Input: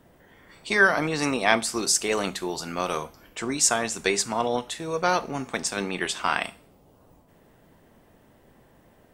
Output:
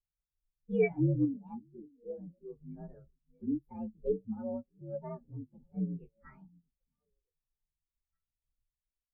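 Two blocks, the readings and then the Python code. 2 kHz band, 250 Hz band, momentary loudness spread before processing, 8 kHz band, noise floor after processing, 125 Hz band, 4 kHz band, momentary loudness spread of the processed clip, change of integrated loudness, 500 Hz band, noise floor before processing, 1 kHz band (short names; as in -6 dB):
under -25 dB, -4.5 dB, 11 LU, under -40 dB, under -85 dBFS, +0.5 dB, under -40 dB, 19 LU, -10.5 dB, -9.0 dB, -58 dBFS, -26.5 dB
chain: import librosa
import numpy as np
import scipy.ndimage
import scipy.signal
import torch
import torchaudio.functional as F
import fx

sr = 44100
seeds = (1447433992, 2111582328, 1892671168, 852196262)

y = fx.partial_stretch(x, sr, pct=122)
y = fx.tilt_eq(y, sr, slope=-4.0)
y = fx.tremolo_random(y, sr, seeds[0], hz=1.6, depth_pct=55)
y = 10.0 ** (-13.0 / 20.0) * np.tanh(y / 10.0 ** (-13.0 / 20.0))
y = fx.echo_stepped(y, sr, ms=627, hz=210.0, octaves=1.4, feedback_pct=70, wet_db=-10.0)
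y = fx.spectral_expand(y, sr, expansion=2.5)
y = y * 10.0 ** (-3.0 / 20.0)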